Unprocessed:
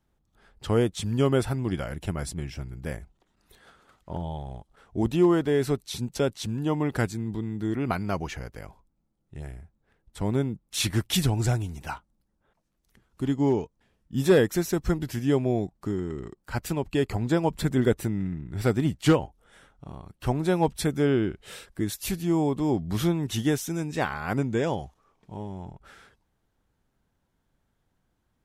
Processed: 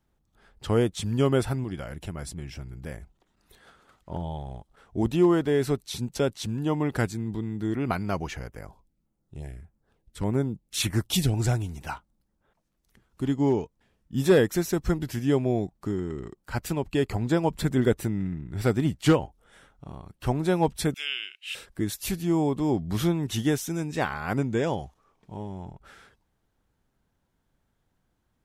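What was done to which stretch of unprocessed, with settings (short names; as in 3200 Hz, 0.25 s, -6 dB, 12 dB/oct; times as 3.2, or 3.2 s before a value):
1.64–4.12 compressor 1.5:1, threshold -38 dBFS
8.47–11.34 LFO notch saw down 1.7 Hz 640–5400 Hz
20.94–21.55 resonant high-pass 2700 Hz, resonance Q 9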